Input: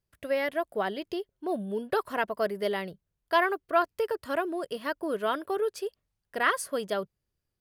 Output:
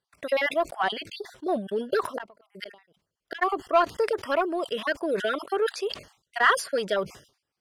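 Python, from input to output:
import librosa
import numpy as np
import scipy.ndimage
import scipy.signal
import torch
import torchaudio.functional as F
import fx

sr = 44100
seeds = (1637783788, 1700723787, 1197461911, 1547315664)

p1 = fx.spec_dropout(x, sr, seeds[0], share_pct=36)
p2 = fx.highpass(p1, sr, hz=530.0, slope=6)
p3 = fx.high_shelf(p2, sr, hz=5200.0, db=2.5)
p4 = 10.0 ** (-29.0 / 20.0) * np.tanh(p3 / 10.0 ** (-29.0 / 20.0))
p5 = p3 + (p4 * librosa.db_to_amplitude(-4.0))
p6 = fx.gate_flip(p5, sr, shuts_db=-24.0, range_db=-40, at=(2.05, 3.41), fade=0.02)
p7 = fx.air_absorb(p6, sr, metres=67.0)
p8 = fx.sustainer(p7, sr, db_per_s=140.0)
y = p8 * librosa.db_to_amplitude(4.5)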